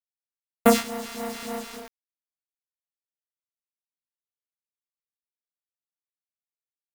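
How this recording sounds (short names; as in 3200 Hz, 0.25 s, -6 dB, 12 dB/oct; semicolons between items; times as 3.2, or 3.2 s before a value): a buzz of ramps at a fixed pitch in blocks of 64 samples; phasing stages 2, 3.4 Hz, lowest notch 400–5000 Hz; a quantiser's noise floor 6-bit, dither none; noise-modulated level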